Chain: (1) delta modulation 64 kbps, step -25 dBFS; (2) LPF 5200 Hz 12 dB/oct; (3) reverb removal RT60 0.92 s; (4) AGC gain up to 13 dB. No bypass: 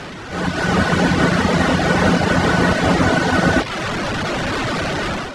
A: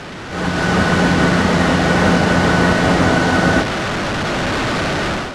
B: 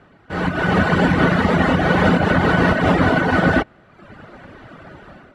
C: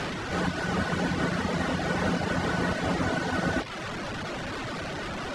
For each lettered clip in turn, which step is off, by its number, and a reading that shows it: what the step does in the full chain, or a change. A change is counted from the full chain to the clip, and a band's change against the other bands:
3, loudness change +2.0 LU; 1, 4 kHz band -5.5 dB; 4, loudness change -12.0 LU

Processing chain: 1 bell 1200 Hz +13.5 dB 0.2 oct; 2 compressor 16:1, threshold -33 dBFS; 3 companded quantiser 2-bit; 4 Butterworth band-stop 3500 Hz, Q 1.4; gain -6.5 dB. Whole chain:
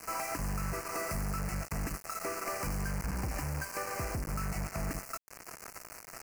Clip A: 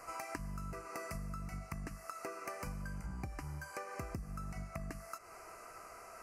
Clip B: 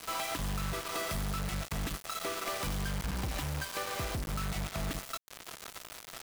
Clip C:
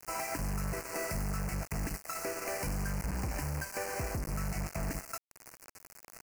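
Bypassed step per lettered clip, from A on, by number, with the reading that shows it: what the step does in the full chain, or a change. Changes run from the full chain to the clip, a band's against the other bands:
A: 3, distortion -5 dB; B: 4, 4 kHz band +8.5 dB; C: 1, 1 kHz band -2.5 dB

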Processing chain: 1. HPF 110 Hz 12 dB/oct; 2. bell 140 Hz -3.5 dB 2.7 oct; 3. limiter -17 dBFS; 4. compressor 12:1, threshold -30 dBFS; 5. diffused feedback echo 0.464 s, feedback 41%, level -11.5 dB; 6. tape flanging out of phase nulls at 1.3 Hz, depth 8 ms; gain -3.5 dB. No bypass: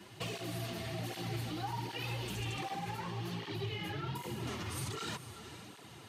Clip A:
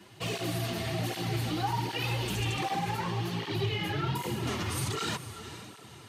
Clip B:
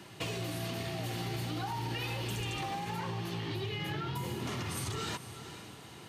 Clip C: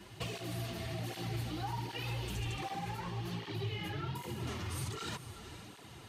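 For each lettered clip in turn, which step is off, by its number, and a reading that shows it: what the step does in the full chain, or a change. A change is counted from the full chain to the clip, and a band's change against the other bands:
4, mean gain reduction 6.0 dB; 6, loudness change +3.0 LU; 1, 125 Hz band +2.5 dB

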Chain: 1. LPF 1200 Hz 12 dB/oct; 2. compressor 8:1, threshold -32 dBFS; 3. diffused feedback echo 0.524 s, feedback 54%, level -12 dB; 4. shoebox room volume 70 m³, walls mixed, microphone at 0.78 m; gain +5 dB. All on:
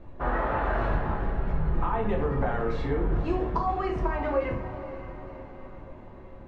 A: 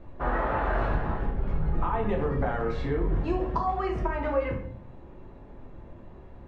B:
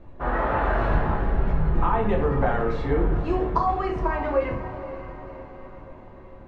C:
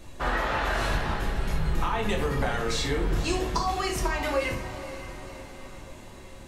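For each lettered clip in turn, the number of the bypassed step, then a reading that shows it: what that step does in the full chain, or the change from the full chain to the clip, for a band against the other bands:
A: 3, momentary loudness spread change +4 LU; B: 2, mean gain reduction 2.5 dB; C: 1, 4 kHz band +18.0 dB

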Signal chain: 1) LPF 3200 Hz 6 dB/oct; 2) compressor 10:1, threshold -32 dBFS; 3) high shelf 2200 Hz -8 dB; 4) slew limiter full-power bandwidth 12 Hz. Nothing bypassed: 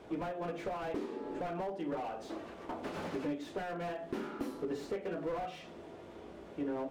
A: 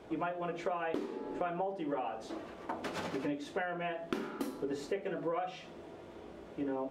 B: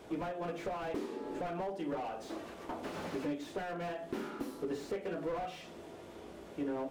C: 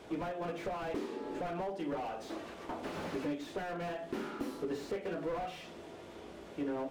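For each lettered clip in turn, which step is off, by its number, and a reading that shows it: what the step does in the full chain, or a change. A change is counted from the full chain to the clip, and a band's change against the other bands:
4, distortion -7 dB; 1, 8 kHz band +3.5 dB; 3, 8 kHz band +2.5 dB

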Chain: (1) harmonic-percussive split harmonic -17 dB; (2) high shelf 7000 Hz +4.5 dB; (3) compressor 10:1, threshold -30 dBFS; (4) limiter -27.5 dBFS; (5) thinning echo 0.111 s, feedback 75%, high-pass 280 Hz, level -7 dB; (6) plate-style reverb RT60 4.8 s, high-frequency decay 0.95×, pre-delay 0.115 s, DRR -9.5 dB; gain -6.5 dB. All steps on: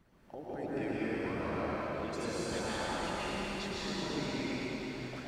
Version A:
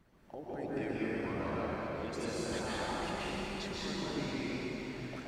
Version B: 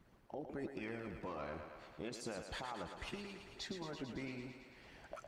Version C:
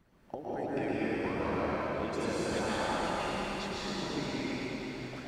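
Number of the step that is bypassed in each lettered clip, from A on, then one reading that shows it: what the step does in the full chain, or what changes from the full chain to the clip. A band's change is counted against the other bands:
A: 5, echo-to-direct 11.0 dB to 9.5 dB; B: 6, echo-to-direct 11.0 dB to -4.0 dB; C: 4, momentary loudness spread change +2 LU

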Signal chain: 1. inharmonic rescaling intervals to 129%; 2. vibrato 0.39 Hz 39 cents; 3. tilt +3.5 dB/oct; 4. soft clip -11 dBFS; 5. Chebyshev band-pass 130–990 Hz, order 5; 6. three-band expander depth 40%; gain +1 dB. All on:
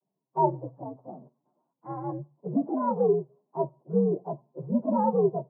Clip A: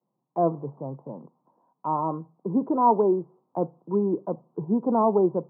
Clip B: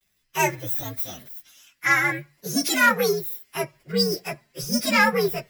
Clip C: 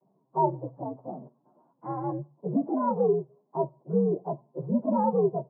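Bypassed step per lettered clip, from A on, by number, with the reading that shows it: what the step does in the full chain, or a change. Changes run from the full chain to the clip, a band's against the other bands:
1, 125 Hz band -3.0 dB; 5, 1 kHz band +3.5 dB; 6, momentary loudness spread change -3 LU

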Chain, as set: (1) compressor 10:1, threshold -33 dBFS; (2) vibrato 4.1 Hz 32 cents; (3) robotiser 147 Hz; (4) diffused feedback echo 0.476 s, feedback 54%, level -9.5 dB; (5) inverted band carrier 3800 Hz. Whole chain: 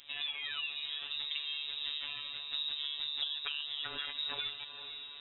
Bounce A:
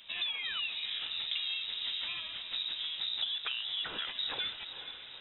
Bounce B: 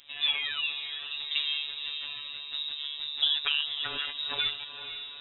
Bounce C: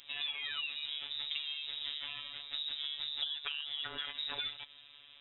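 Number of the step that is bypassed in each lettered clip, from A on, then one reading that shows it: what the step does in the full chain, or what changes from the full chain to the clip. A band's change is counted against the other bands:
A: 3, crest factor change -3.5 dB; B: 1, mean gain reduction 4.0 dB; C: 4, momentary loudness spread change +1 LU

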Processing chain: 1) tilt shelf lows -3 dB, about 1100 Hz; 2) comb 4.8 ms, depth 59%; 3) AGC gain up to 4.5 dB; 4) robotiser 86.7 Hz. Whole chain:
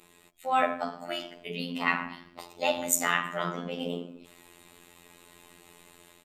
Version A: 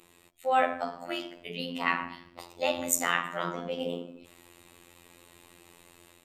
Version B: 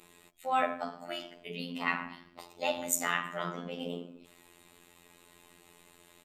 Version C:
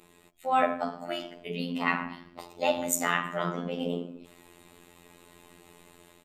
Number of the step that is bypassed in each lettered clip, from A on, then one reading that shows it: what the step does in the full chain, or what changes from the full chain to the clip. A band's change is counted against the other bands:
2, 125 Hz band -2.0 dB; 3, momentary loudness spread change -1 LU; 1, 8 kHz band -4.0 dB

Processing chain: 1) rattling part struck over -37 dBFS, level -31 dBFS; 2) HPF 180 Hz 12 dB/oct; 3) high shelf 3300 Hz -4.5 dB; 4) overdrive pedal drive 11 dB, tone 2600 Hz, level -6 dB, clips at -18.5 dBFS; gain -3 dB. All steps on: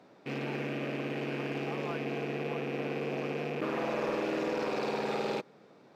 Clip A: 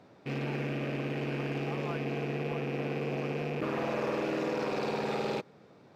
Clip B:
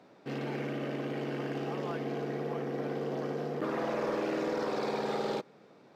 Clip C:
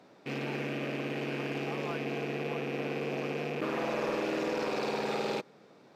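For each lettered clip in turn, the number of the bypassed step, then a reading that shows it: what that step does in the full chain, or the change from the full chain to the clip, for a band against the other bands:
2, 125 Hz band +5.5 dB; 1, 2 kHz band -3.5 dB; 3, 4 kHz band +2.0 dB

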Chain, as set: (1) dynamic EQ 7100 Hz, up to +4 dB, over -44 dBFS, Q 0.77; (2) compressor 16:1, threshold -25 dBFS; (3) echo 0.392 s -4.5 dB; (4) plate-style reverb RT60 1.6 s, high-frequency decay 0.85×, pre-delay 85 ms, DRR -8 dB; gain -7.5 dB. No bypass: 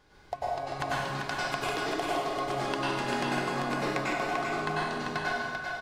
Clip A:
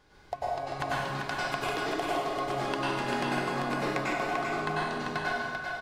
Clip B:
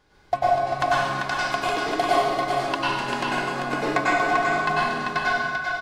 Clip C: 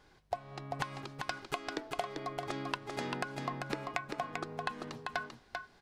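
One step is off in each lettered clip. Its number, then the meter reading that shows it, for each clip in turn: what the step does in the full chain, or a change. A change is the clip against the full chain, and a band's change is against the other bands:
1, 8 kHz band -2.0 dB; 2, mean gain reduction 4.0 dB; 4, echo-to-direct 9.5 dB to -4.5 dB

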